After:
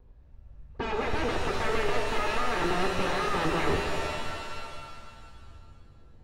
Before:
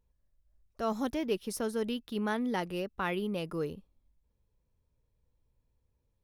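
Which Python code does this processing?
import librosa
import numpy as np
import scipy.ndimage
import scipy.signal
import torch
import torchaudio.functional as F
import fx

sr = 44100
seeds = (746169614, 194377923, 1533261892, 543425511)

y = fx.lower_of_two(x, sr, delay_ms=2.4)
y = fx.fold_sine(y, sr, drive_db=19, ceiling_db=-20.5)
y = fx.dmg_noise_colour(y, sr, seeds[0], colour='blue', level_db=-63.0)
y = fx.spacing_loss(y, sr, db_at_10k=44)
y = fx.rev_shimmer(y, sr, seeds[1], rt60_s=2.1, semitones=7, shimmer_db=-2, drr_db=2.5)
y = y * 10.0 ** (-2.0 / 20.0)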